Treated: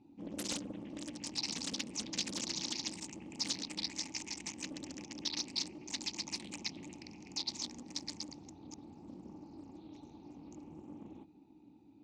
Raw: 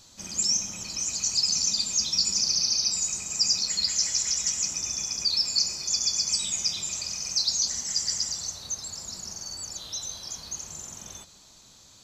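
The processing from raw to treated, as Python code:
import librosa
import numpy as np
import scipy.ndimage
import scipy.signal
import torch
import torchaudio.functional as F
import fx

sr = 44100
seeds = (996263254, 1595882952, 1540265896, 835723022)

y = fx.wiener(x, sr, points=41)
y = fx.vowel_filter(y, sr, vowel='u')
y = fx.doppler_dist(y, sr, depth_ms=0.7)
y = y * librosa.db_to_amplitude(16.0)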